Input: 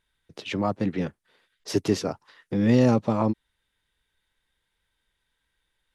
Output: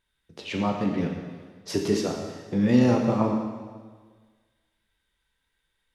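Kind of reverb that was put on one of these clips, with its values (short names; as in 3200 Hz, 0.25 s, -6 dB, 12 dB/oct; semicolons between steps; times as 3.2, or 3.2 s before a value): plate-style reverb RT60 1.5 s, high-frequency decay 0.95×, DRR 0.5 dB; gain -2.5 dB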